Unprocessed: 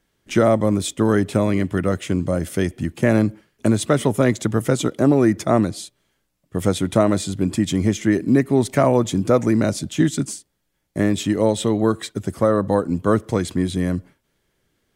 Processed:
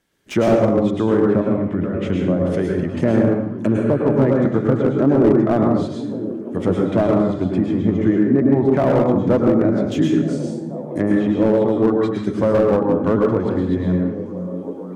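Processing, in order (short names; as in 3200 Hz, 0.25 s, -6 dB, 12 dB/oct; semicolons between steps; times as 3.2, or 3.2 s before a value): 3.7–4.06 spectral repair 1200–8100 Hz before; treble ducked by the level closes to 1100 Hz, closed at -16 dBFS; low shelf 73 Hz -10.5 dB; 1.41–1.98 negative-ratio compressor -26 dBFS, ratio -1; on a send: delay with a stepping band-pass 0.482 s, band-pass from 160 Hz, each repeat 0.7 oct, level -8.5 dB; on the sum: plate-style reverb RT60 0.72 s, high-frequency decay 0.85×, pre-delay 95 ms, DRR -0.5 dB; slew limiter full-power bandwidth 140 Hz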